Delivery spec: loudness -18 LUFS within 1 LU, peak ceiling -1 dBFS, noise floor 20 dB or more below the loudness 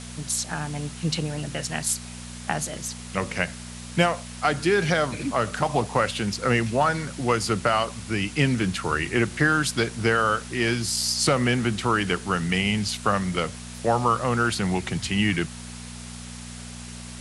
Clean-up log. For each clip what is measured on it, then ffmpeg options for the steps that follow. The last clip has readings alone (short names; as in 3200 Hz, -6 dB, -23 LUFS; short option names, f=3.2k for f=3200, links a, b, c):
hum 60 Hz; harmonics up to 240 Hz; hum level -37 dBFS; noise floor -39 dBFS; noise floor target -45 dBFS; loudness -24.5 LUFS; peak -5.0 dBFS; loudness target -18.0 LUFS
-> -af "bandreject=f=60:t=h:w=4,bandreject=f=120:t=h:w=4,bandreject=f=180:t=h:w=4,bandreject=f=240:t=h:w=4"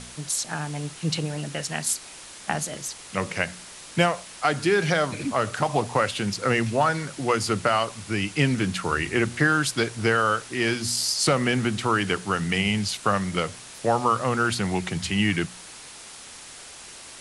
hum none; noise floor -43 dBFS; noise floor target -45 dBFS
-> -af "afftdn=nr=6:nf=-43"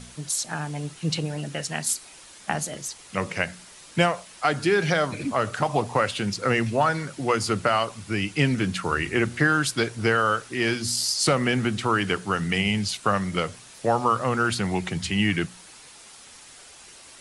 noise floor -48 dBFS; loudness -25.0 LUFS; peak -5.0 dBFS; loudness target -18.0 LUFS
-> -af "volume=7dB,alimiter=limit=-1dB:level=0:latency=1"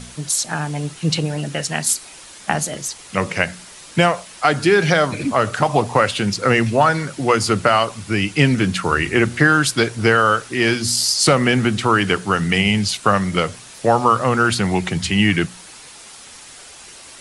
loudness -18.0 LUFS; peak -1.0 dBFS; noise floor -41 dBFS